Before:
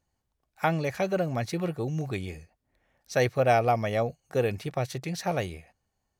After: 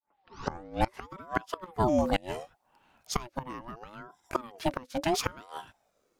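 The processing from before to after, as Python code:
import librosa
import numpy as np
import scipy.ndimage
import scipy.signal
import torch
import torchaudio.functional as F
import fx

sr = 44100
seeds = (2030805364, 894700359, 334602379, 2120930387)

y = fx.tape_start_head(x, sr, length_s=1.06)
y = fx.gate_flip(y, sr, shuts_db=-20.0, range_db=-25)
y = fx.ring_lfo(y, sr, carrier_hz=630.0, swing_pct=40, hz=0.72)
y = F.gain(torch.from_numpy(y), 8.5).numpy()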